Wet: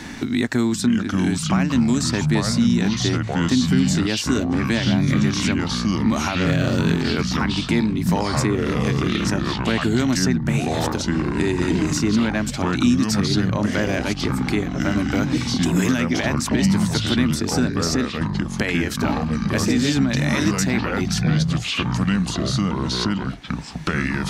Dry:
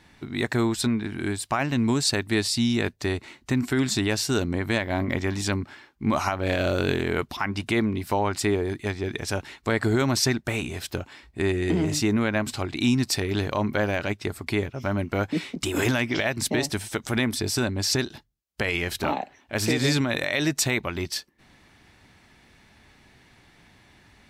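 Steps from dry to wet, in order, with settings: fifteen-band graphic EQ 250 Hz +11 dB, 1.6 kHz +3 dB, 6.3 kHz +8 dB; ever faster or slower copies 440 ms, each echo -4 st, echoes 3; three bands compressed up and down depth 70%; trim -3 dB

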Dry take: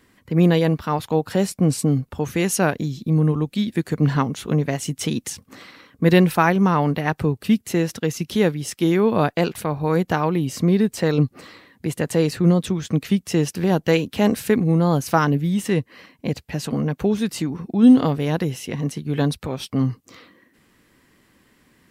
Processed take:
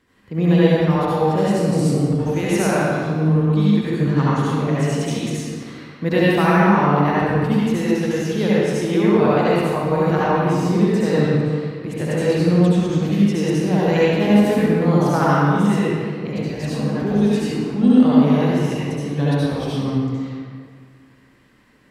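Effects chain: treble shelf 8.9 kHz -11.5 dB; reverberation RT60 2.0 s, pre-delay 63 ms, DRR -9 dB; trim -6 dB

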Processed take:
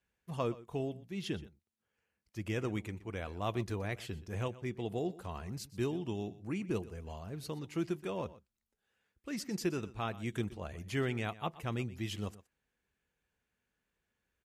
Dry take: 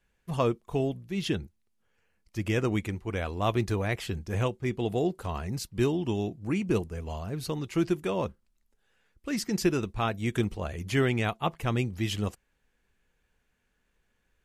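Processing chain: high-pass 58 Hz; delay 122 ms -18 dB; trim -8.5 dB

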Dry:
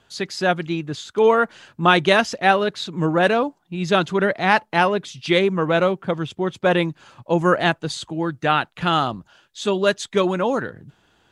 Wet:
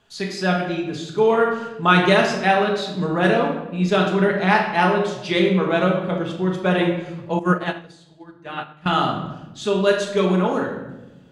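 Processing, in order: simulated room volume 430 m³, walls mixed, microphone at 1.4 m; 7.39–8.86 s: upward expansion 2.5:1, over -22 dBFS; trim -4 dB

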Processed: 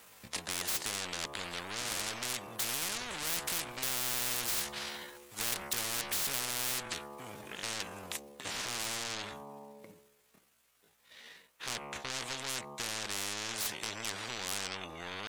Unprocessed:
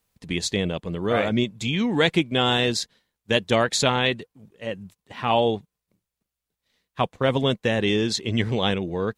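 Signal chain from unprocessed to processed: Doppler pass-by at 2.93 s, 8 m/s, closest 5.9 m; peaking EQ 4.4 kHz -4.5 dB 1.2 oct; de-hum 71.54 Hz, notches 17; in parallel at -1 dB: compression 5:1, threshold -38 dBFS, peak gain reduction 18 dB; on the sum: tempo 0.6×; overdrive pedal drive 24 dB, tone 6.5 kHz, clips at -15.5 dBFS; spectrum-flattening compressor 10:1; trim -6 dB

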